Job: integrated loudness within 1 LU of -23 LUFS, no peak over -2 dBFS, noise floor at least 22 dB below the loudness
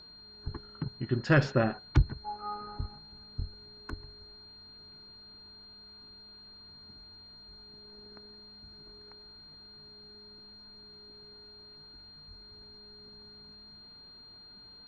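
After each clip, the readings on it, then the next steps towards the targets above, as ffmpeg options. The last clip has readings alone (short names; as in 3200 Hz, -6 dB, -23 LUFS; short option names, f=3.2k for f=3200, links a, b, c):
steady tone 4200 Hz; tone level -50 dBFS; loudness -32.5 LUFS; peak -10.0 dBFS; loudness target -23.0 LUFS
-> -af "bandreject=f=4.2k:w=30"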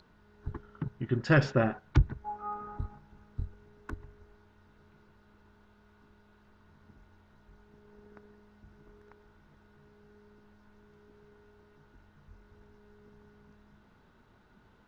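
steady tone none; loudness -32.5 LUFS; peak -10.0 dBFS; loudness target -23.0 LUFS
-> -af "volume=9.5dB,alimiter=limit=-2dB:level=0:latency=1"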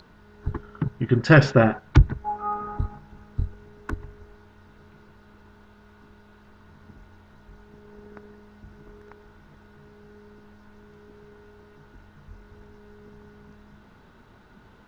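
loudness -23.0 LUFS; peak -2.0 dBFS; noise floor -53 dBFS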